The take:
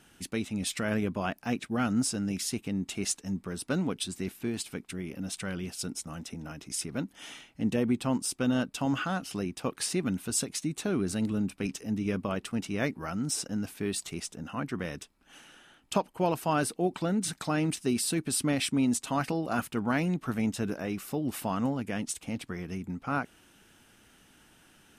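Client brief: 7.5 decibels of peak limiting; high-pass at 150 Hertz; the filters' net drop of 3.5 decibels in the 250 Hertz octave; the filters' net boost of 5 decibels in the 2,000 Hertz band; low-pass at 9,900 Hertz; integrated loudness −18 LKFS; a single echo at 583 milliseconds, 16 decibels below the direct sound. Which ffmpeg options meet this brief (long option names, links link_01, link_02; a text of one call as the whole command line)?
ffmpeg -i in.wav -af "highpass=150,lowpass=9900,equalizer=frequency=250:width_type=o:gain=-3.5,equalizer=frequency=2000:width_type=o:gain=7,alimiter=limit=-19dB:level=0:latency=1,aecho=1:1:583:0.158,volume=15.5dB" out.wav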